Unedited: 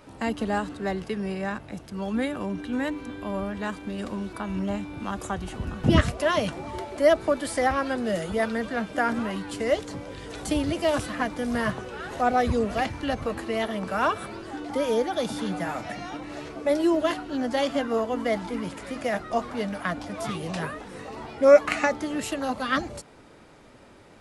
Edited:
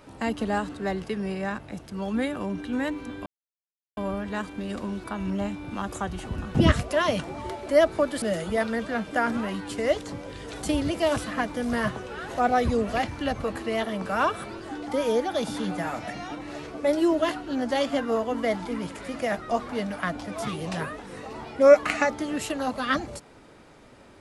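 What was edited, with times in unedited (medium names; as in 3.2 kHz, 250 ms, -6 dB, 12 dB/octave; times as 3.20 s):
3.26 s: insert silence 0.71 s
7.51–8.04 s: delete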